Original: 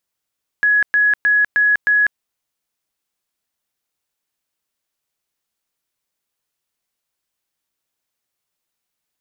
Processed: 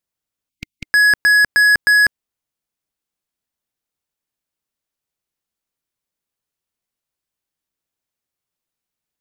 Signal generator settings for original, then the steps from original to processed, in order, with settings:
tone bursts 1.68 kHz, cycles 331, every 0.31 s, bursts 5, -11 dBFS
spectral selection erased 0.49–0.84 s, 310–2100 Hz; bass shelf 420 Hz +6.5 dB; waveshaping leveller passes 3

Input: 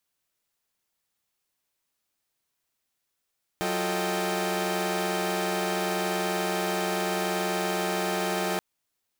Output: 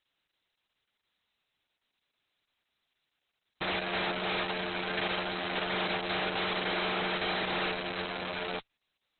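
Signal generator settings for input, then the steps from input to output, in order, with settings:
chord F#3/F4/A4/D#5/G5 saw, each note -30 dBFS 4.98 s
hard clipper -32 dBFS; treble shelf 2.7 kHz +9 dB; Opus 6 kbps 48 kHz

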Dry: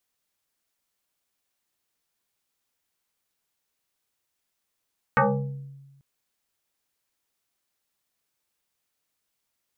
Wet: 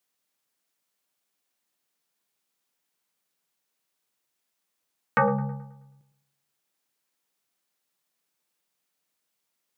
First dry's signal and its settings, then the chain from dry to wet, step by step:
FM tone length 0.84 s, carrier 138 Hz, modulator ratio 2.48, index 5.2, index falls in 0.79 s exponential, decay 1.24 s, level -14.5 dB
high-pass 130 Hz 24 dB/octave; on a send: feedback echo behind a low-pass 107 ms, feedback 43%, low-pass 980 Hz, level -9.5 dB

